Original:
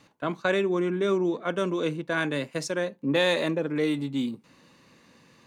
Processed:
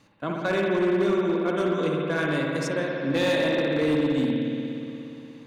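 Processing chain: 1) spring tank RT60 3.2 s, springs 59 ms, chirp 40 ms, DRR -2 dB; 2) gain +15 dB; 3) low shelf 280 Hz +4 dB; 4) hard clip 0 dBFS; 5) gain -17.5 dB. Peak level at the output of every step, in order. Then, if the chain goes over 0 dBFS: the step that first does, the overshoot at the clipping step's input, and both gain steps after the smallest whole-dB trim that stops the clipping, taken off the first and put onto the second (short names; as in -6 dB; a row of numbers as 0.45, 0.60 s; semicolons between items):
-9.5, +5.5, +7.0, 0.0, -17.5 dBFS; step 2, 7.0 dB; step 2 +8 dB, step 5 -10.5 dB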